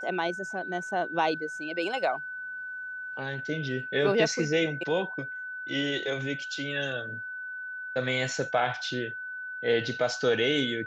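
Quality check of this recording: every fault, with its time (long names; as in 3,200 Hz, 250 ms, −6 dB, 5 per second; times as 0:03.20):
whistle 1,500 Hz −35 dBFS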